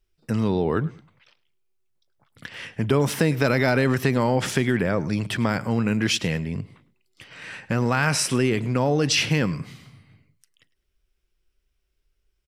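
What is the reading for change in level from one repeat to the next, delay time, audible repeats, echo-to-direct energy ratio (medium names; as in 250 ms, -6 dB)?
-11.0 dB, 104 ms, 2, -19.5 dB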